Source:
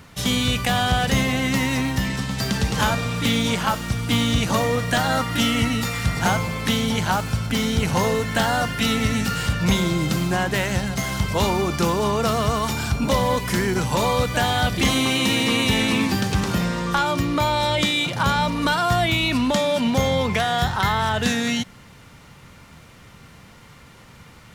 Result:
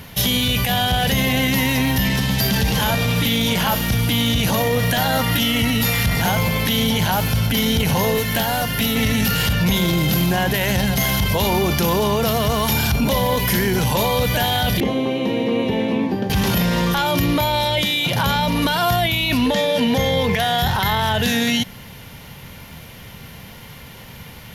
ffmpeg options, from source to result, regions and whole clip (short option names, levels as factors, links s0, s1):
-filter_complex "[0:a]asettb=1/sr,asplit=3[s0][s1][s2];[s0]atrim=end=8.174[s3];[s1]atrim=start=8.17:end=8.96,asetpts=PTS-STARTPTS,afade=t=in:d=0.004:c=qsin,afade=t=out:st=0.786:d=0.004:c=qsin,acrossover=split=1400|7400[s4][s5][s6];[s4]acompressor=threshold=0.0447:ratio=4[s7];[s5]acompressor=threshold=0.0178:ratio=4[s8];[s6]acompressor=threshold=0.00316:ratio=4[s9];[s7][s8][s9]amix=inputs=3:normalize=0,asoftclip=type=hard:threshold=0.075,highshelf=f=7000:g=8.5[s10];[s2]atrim=start=8.956[s11];[s3][s10]acrossfade=d=0.004:c1=hsin:c2=qsin[s12];[s12][s11]acrossfade=d=0.004:c1=qsin:c2=hsin,asettb=1/sr,asplit=3[s13][s14][s15];[s13]atrim=end=14.804[s16];[s14]atrim=start=14.8:end=16.3,asetpts=PTS-STARTPTS,afade=t=in:d=0.004:c=qsin,afade=t=out:st=1.496:d=0.004:c=qsin,bandpass=f=400:t=q:w=1.3,asplit=2[s17][s18];[s18]adelay=17,volume=0.251[s19];[s17][s19]amix=inputs=2:normalize=0,atrim=end_sample=66150[s20];[s15]atrim=start=16.296[s21];[s16][s20]acrossfade=d=0.004:c1=hsin:c2=qsin[s22];[s22][s21]acrossfade=d=0.004:c1=qsin:c2=hsin,asettb=1/sr,asplit=3[s23][s24][s25];[s23]atrim=end=19.464[s26];[s24]atrim=start=19.46:end=20.39,asetpts=PTS-STARTPTS,afade=t=in:d=0.004:c=qsin,afade=t=out:st=0.926:d=0.004:c=qsin,acrossover=split=8400[s27][s28];[s28]acompressor=threshold=0.00447:ratio=4:attack=1:release=60[s29];[s27][s29]amix=inputs=2:normalize=0,equalizer=f=1800:t=o:w=0.23:g=7.5,aeval=exprs='val(0)+0.0447*sin(2*PI*470*n/s)':c=same[s30];[s25]atrim=start=20.386[s31];[s26][s30]acrossfade=d=0.004:c1=hsin:c2=qsin[s32];[s32][s31]acrossfade=d=0.004:c1=qsin:c2=hsin,equalizer=f=315:t=o:w=0.33:g=-5,equalizer=f=1250:t=o:w=0.33:g=-9,equalizer=f=3150:t=o:w=0.33:g=4,equalizer=f=8000:t=o:w=0.33:g=-8,alimiter=limit=0.112:level=0:latency=1:release=15,equalizer=f=12000:t=o:w=0.28:g=14.5,volume=2.51"